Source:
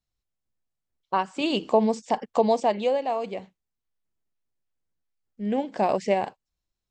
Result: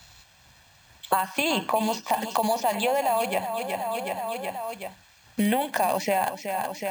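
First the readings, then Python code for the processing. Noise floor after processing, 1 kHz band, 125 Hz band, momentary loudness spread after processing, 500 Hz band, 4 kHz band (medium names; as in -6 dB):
-57 dBFS, +3.0 dB, no reading, 9 LU, -2.0 dB, +4.0 dB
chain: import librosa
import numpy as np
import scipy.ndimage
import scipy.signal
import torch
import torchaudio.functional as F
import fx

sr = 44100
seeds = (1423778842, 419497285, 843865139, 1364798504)

p1 = scipy.signal.sosfilt(scipy.signal.butter(2, 89.0, 'highpass', fs=sr, output='sos'), x)
p2 = fx.peak_eq(p1, sr, hz=250.0, db=-13.0, octaves=2.3)
p3 = p2 + 0.53 * np.pad(p2, (int(1.2 * sr / 1000.0), 0))[:len(p2)]
p4 = fx.over_compress(p3, sr, threshold_db=-34.0, ratio=-1.0)
p5 = p3 + (p4 * 10.0 ** (3.0 / 20.0))
p6 = fx.echo_feedback(p5, sr, ms=372, feedback_pct=40, wet_db=-13.0)
p7 = np.repeat(scipy.signal.resample_poly(p6, 1, 4), 4)[:len(p6)]
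y = fx.band_squash(p7, sr, depth_pct=100)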